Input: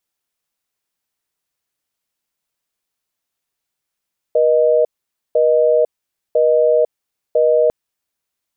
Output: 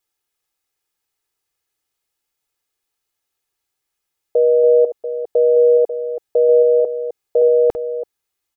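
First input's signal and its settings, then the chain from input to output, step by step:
call progress tone busy tone, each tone −13 dBFS 3.35 s
delay that plays each chunk backwards 309 ms, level −10.5 dB
comb filter 2.4 ms, depth 51%

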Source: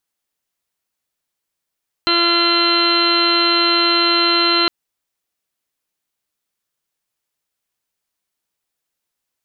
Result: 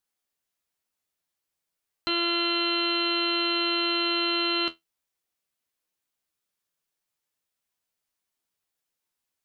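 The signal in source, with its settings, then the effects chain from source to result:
steady harmonic partials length 2.61 s, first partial 342 Hz, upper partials −8/−5/0.5/−12/−6.5/−13.5/−4.5/−3/−14.5/−16/4 dB, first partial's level −20 dB
brickwall limiter −11.5 dBFS
tuned comb filter 83 Hz, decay 0.15 s, harmonics all, mix 80%

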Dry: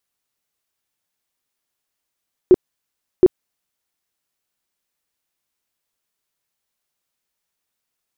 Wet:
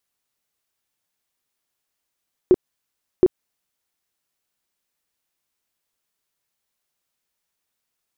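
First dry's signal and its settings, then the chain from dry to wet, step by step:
tone bursts 366 Hz, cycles 12, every 0.72 s, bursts 2, −4.5 dBFS
downward compressor, threshold −12 dBFS

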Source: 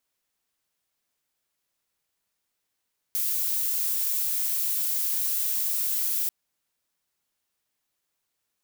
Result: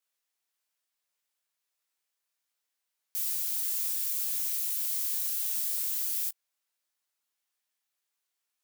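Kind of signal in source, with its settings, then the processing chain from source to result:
noise violet, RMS −26.5 dBFS 3.14 s
high-pass filter 810 Hz 6 dB per octave
micro pitch shift up and down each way 55 cents

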